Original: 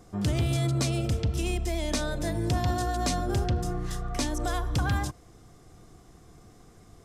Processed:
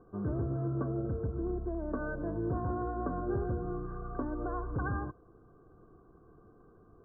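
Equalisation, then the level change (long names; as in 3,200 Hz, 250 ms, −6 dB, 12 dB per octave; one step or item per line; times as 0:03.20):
Chebyshev low-pass with heavy ripple 1,600 Hz, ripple 9 dB
0.0 dB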